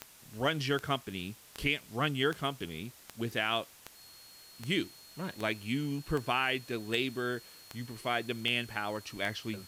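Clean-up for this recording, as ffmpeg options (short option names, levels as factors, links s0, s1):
-af "adeclick=t=4,bandreject=f=4300:w=30,afftdn=nr=23:nf=-55"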